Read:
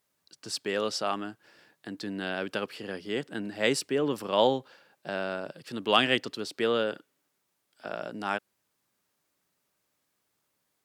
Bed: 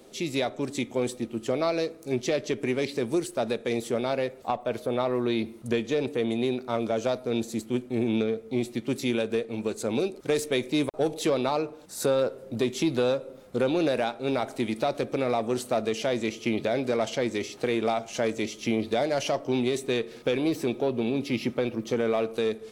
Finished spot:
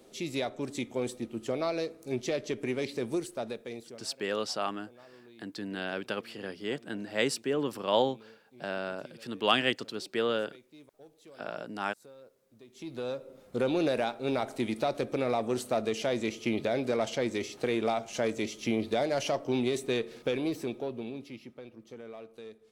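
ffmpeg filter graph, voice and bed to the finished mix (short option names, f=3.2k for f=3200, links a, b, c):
-filter_complex "[0:a]adelay=3550,volume=-2.5dB[a];[1:a]volume=20.5dB,afade=t=out:st=3.12:d=0.94:silence=0.0668344,afade=t=in:st=12.68:d=1.03:silence=0.0530884,afade=t=out:st=20.07:d=1.35:silence=0.149624[b];[a][b]amix=inputs=2:normalize=0"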